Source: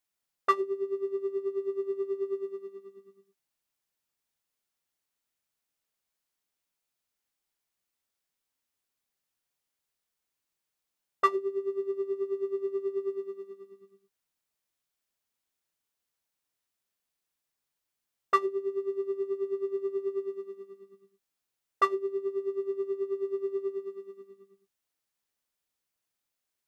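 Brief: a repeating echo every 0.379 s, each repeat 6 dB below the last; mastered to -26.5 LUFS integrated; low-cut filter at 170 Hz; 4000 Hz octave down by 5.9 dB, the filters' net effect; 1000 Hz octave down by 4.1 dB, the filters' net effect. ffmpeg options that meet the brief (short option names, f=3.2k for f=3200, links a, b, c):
-af "highpass=170,equalizer=f=1k:t=o:g=-4.5,equalizer=f=4k:t=o:g=-7,aecho=1:1:379|758|1137|1516|1895|2274:0.501|0.251|0.125|0.0626|0.0313|0.0157,volume=7dB"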